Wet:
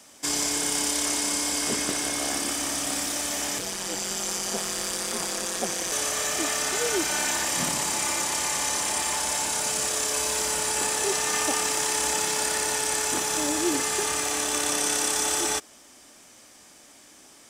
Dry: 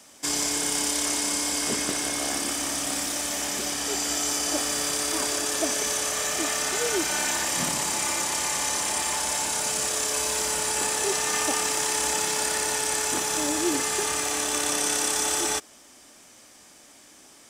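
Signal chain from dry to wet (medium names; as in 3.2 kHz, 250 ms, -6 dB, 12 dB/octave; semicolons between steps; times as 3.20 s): 3.58–5.92 s: ring modulator 91 Hz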